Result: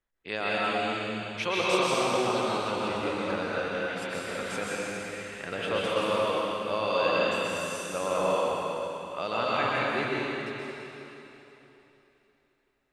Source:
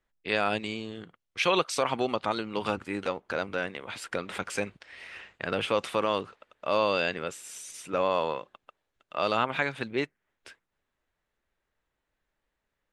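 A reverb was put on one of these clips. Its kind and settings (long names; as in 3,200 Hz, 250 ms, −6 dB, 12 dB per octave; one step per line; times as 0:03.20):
dense smooth reverb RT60 3.3 s, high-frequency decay 1×, pre-delay 110 ms, DRR −7 dB
level −6 dB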